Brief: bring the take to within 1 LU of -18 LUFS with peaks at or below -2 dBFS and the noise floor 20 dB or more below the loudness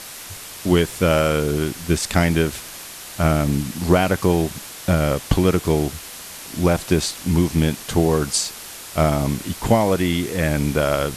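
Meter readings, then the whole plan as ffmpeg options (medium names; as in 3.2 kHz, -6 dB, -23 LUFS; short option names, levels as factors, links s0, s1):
noise floor -37 dBFS; noise floor target -41 dBFS; loudness -20.5 LUFS; peak level -3.5 dBFS; loudness target -18.0 LUFS
-> -af "afftdn=nr=6:nf=-37"
-af "volume=1.33,alimiter=limit=0.794:level=0:latency=1"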